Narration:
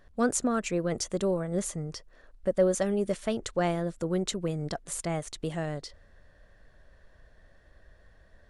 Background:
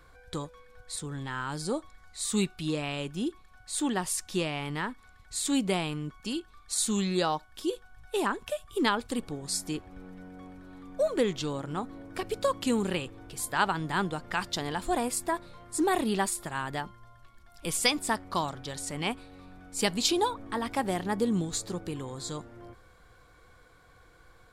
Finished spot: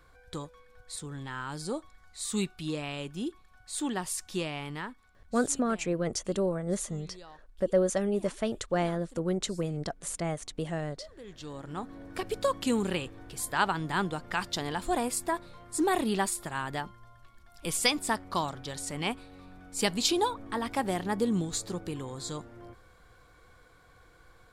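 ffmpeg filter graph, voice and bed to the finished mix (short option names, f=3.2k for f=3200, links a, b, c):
-filter_complex "[0:a]adelay=5150,volume=-1dB[a];[1:a]volume=19dB,afade=t=out:st=4.59:d=0.93:silence=0.105925,afade=t=in:st=11.22:d=0.84:silence=0.0794328[b];[a][b]amix=inputs=2:normalize=0"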